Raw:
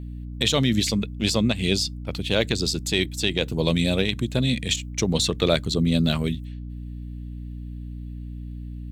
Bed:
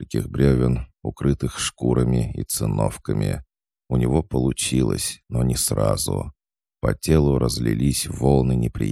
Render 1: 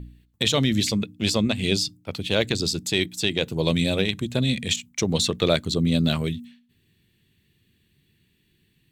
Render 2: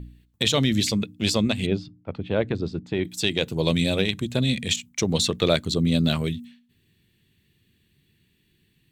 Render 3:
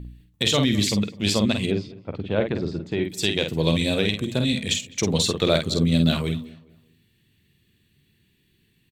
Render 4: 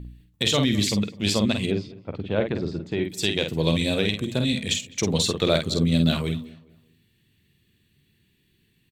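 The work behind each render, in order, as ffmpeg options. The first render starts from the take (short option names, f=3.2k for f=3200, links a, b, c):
-af "bandreject=f=60:t=h:w=4,bandreject=f=120:t=h:w=4,bandreject=f=180:t=h:w=4,bandreject=f=240:t=h:w=4,bandreject=f=300:t=h:w=4"
-filter_complex "[0:a]asplit=3[a][b][c];[a]afade=t=out:st=1.65:d=0.02[d];[b]lowpass=1.4k,afade=t=in:st=1.65:d=0.02,afade=t=out:st=3.04:d=0.02[e];[c]afade=t=in:st=3.04:d=0.02[f];[d][e][f]amix=inputs=3:normalize=0"
-filter_complex "[0:a]asplit=2[a][b];[b]adelay=49,volume=-6dB[c];[a][c]amix=inputs=2:normalize=0,asplit=2[d][e];[e]adelay=206,lowpass=f=2.2k:p=1,volume=-20dB,asplit=2[f][g];[g]adelay=206,lowpass=f=2.2k:p=1,volume=0.36,asplit=2[h][i];[i]adelay=206,lowpass=f=2.2k:p=1,volume=0.36[j];[d][f][h][j]amix=inputs=4:normalize=0"
-af "volume=-1dB"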